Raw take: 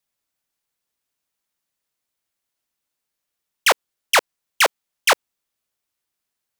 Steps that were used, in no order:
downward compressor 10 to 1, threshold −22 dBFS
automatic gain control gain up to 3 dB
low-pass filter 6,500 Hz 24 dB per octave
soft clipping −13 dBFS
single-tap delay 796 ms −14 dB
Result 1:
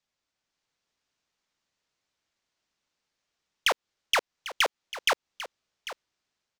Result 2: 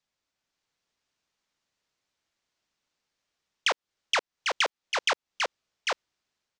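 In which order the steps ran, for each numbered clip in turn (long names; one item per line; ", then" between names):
low-pass filter, then soft clipping, then automatic gain control, then downward compressor, then single-tap delay
automatic gain control, then single-tap delay, then downward compressor, then soft clipping, then low-pass filter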